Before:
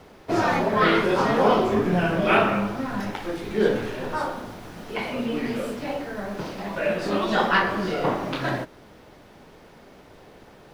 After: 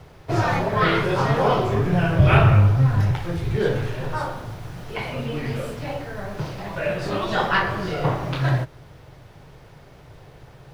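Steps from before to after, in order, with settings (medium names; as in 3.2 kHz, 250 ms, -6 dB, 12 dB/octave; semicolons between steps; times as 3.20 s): 2.18–3.56 s: octave divider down 1 oct, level +2 dB; resonant low shelf 170 Hz +7.5 dB, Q 3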